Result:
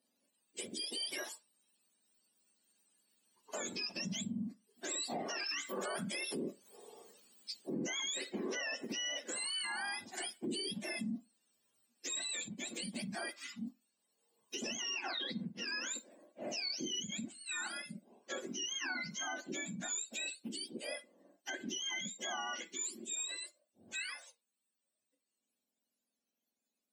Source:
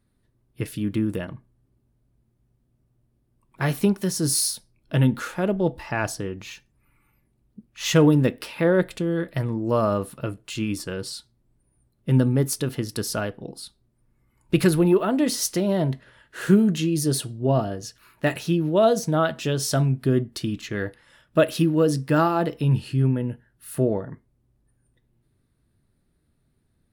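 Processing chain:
frequency axis turned over on the octave scale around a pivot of 1,000 Hz
source passing by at 0:06.59, 5 m/s, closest 4.7 metres
downward compressor 2.5 to 1, threshold −46 dBFS, peak gain reduction 19 dB
Chebyshev high-pass filter 210 Hz, order 4
brickwall limiter −44.5 dBFS, peak gain reduction 14 dB
level +13.5 dB

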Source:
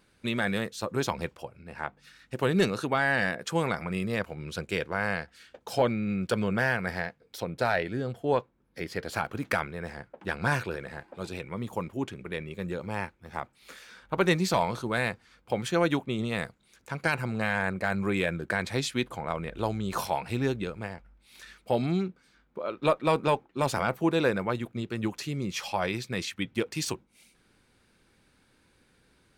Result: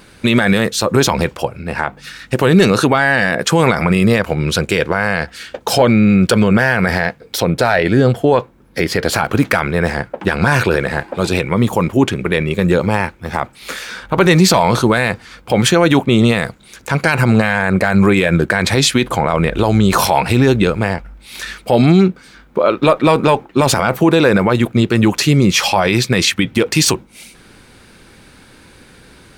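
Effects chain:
boost into a limiter +22.5 dB
level −1 dB

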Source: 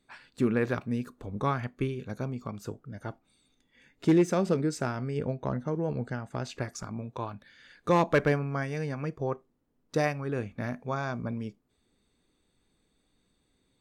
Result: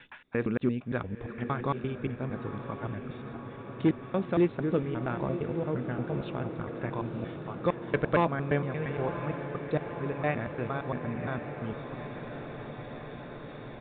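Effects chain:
slices reordered back to front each 115 ms, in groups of 3
reversed playback
upward compression, threshold −31 dBFS
reversed playback
feedback delay with all-pass diffusion 1,005 ms, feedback 74%, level −9.5 dB
downsampling to 8,000 Hz
level −1.5 dB

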